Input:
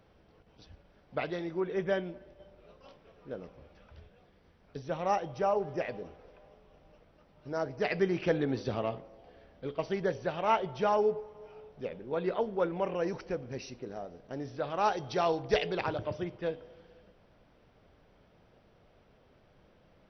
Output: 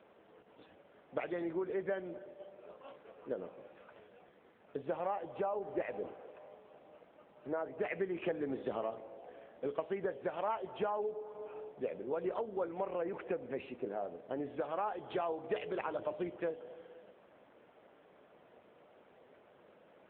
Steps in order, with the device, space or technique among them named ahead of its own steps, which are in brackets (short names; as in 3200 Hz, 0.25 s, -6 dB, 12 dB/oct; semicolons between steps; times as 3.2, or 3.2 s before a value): voicemail (BPF 300–2800 Hz; compressor 6:1, threshold -38 dBFS, peak gain reduction 15.5 dB; gain +5 dB; AMR-NB 7.95 kbps 8000 Hz)